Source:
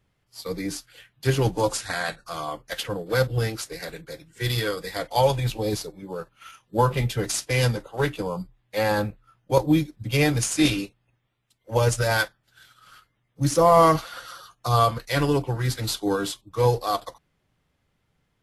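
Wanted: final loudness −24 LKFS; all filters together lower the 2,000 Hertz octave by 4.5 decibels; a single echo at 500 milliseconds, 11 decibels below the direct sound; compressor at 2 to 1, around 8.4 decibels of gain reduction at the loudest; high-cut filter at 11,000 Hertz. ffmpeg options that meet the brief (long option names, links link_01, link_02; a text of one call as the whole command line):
ffmpeg -i in.wav -af "lowpass=11000,equalizer=frequency=2000:width_type=o:gain=-6,acompressor=threshold=-28dB:ratio=2,aecho=1:1:500:0.282,volume=6.5dB" out.wav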